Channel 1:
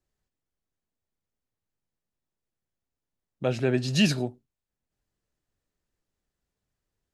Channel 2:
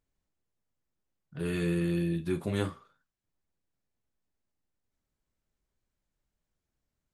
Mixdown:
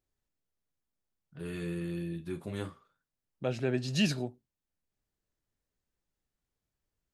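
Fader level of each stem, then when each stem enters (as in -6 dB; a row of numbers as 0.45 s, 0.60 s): -6.0 dB, -7.0 dB; 0.00 s, 0.00 s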